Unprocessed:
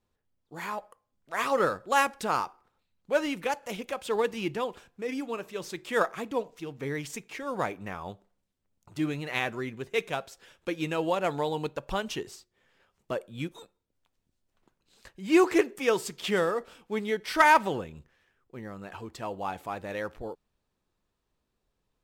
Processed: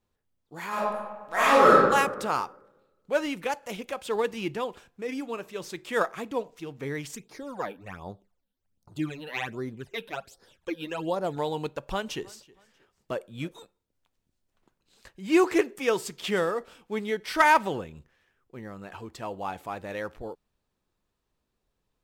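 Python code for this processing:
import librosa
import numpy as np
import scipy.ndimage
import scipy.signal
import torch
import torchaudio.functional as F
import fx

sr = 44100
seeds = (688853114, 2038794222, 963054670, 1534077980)

y = fx.reverb_throw(x, sr, start_s=0.68, length_s=1.07, rt60_s=1.3, drr_db=-9.0)
y = fx.phaser_stages(y, sr, stages=12, low_hz=110.0, high_hz=2800.0, hz=1.3, feedback_pct=25, at=(7.15, 11.37))
y = fx.echo_feedback(y, sr, ms=318, feedback_pct=33, wet_db=-23.5, at=(12.05, 13.57), fade=0.02)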